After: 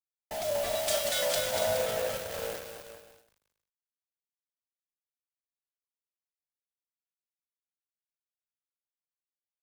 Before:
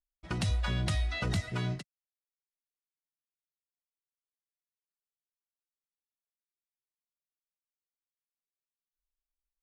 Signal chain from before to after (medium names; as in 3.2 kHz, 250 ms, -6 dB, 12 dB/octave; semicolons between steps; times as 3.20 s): split-band scrambler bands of 500 Hz; peak limiter -24.5 dBFS, peak gain reduction 5 dB; ever faster or slower copies 599 ms, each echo -2 st, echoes 2, each echo -6 dB; 0.75–1.35 s: tilt EQ +4 dB/octave; modulation noise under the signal 14 dB; dynamic bell 2 kHz, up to -4 dB, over -52 dBFS, Q 0.97; flutter echo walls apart 6.7 m, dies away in 0.22 s; bit crusher 6-bit; expander -43 dBFS; bouncing-ball echo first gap 240 ms, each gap 0.75×, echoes 5; three bands expanded up and down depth 70%